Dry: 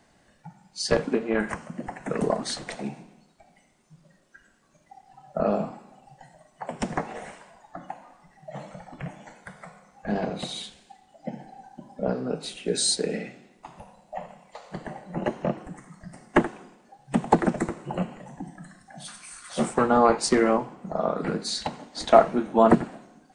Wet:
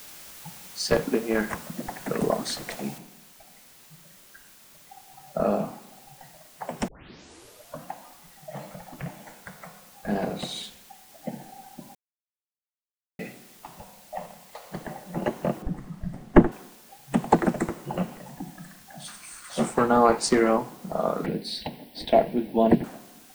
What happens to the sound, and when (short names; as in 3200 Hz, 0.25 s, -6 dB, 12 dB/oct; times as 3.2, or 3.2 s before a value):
2.98 noise floor step -45 dB -53 dB
6.88 tape start 1.02 s
11.95–13.19 mute
15.62–16.52 tilt -3.5 dB/oct
21.26–22.84 fixed phaser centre 3000 Hz, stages 4